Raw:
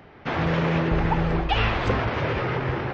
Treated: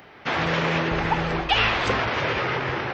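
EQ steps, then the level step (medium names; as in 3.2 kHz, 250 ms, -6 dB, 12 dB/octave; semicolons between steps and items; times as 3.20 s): tilt EQ +2.5 dB/octave; +2.5 dB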